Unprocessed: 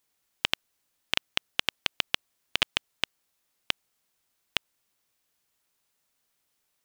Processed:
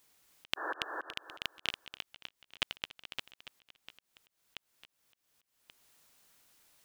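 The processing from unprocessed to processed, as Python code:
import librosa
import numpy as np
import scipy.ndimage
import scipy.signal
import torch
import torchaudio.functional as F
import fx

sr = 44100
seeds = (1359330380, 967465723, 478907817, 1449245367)

y = fx.spec_repair(x, sr, seeds[0], start_s=0.6, length_s=0.22, low_hz=290.0, high_hz=1800.0, source='before')
y = fx.echo_feedback(y, sr, ms=283, feedback_pct=29, wet_db=-3.0)
y = fx.auto_swell(y, sr, attack_ms=481.0)
y = F.gain(torch.from_numpy(y), 8.0).numpy()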